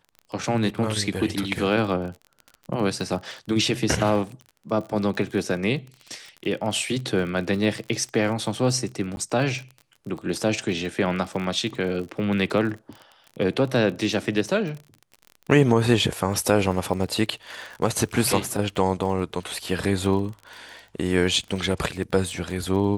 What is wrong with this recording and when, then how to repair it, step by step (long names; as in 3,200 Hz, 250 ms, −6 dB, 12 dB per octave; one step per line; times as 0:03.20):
surface crackle 35 per second −32 dBFS
0:09.16–0:09.17: drop-out 11 ms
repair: click removal
repair the gap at 0:09.16, 11 ms